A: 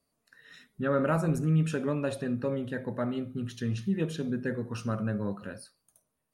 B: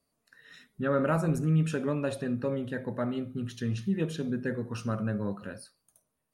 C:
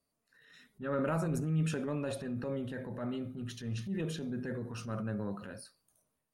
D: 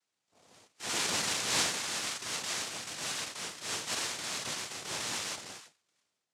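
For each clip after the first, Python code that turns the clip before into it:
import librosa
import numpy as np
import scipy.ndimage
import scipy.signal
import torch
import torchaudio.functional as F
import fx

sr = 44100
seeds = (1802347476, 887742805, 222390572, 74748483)

y1 = x
y2 = fx.transient(y1, sr, attack_db=-8, sustain_db=5)
y2 = y2 * 10.0 ** (-5.0 / 20.0)
y3 = fx.band_swap(y2, sr, width_hz=1000)
y3 = fx.noise_vocoder(y3, sr, seeds[0], bands=2)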